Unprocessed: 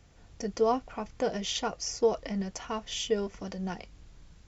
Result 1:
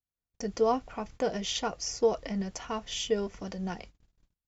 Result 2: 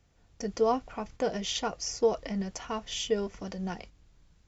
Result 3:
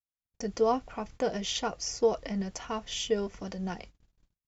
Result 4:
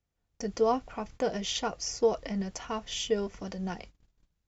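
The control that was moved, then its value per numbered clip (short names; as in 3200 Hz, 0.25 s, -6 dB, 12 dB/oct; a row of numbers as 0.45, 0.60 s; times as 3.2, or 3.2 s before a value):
gate, range: -41, -8, -54, -25 dB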